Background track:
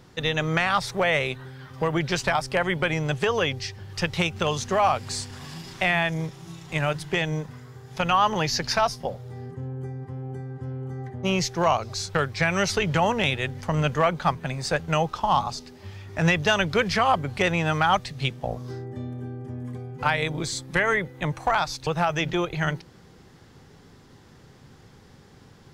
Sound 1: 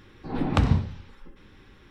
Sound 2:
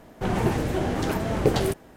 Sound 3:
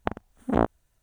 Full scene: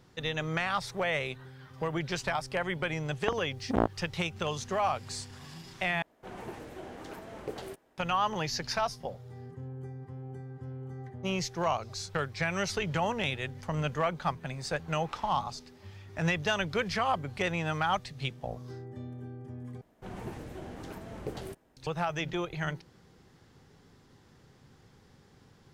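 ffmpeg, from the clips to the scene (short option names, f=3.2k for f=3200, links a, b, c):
-filter_complex "[2:a]asplit=2[a][b];[0:a]volume=-8dB[c];[a]bass=f=250:g=-9,treble=f=4k:g=-2[d];[1:a]highpass=870[e];[c]asplit=3[f][g][h];[f]atrim=end=6.024[i];[d]atrim=end=1.96,asetpts=PTS-STARTPTS,volume=-15.5dB[j];[g]atrim=start=7.976:end=19.814[k];[b]atrim=end=1.96,asetpts=PTS-STARTPTS,volume=-17dB[l];[h]atrim=start=21.766[m];[3:a]atrim=end=1.02,asetpts=PTS-STARTPTS,volume=-4.5dB,afade=t=in:d=0.004:c=hsin,afade=t=out:st=1.016:d=0.004:c=hsin,adelay=141561S[n];[e]atrim=end=1.9,asetpts=PTS-STARTPTS,volume=-13.5dB,afade=t=in:d=0.004:c=hsin,afade=t=out:st=1.896:d=0.004:c=hsin,adelay=14560[o];[i][j]acrossfade=d=0.004:c1=hsin:c2=hsin[p];[p][k]acrossfade=d=0.004:c1=hsin:c2=hsin[q];[q][l]acrossfade=d=0.004:c1=hsin:c2=hsin[r];[r][m]acrossfade=d=0.004:c1=hsin:c2=hsin[s];[s][n][o]amix=inputs=3:normalize=0"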